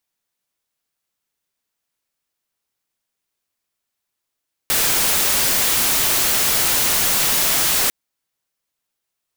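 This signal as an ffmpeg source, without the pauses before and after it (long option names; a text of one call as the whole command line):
ffmpeg -f lavfi -i "anoisesrc=color=white:amplitude=0.231:duration=3.2:sample_rate=44100:seed=1" out.wav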